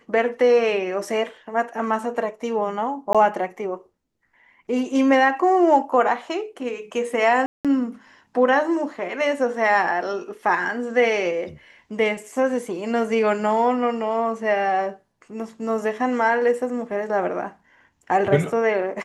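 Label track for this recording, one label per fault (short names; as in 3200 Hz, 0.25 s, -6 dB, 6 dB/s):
3.130000	3.150000	gap 16 ms
7.460000	7.650000	gap 0.187 s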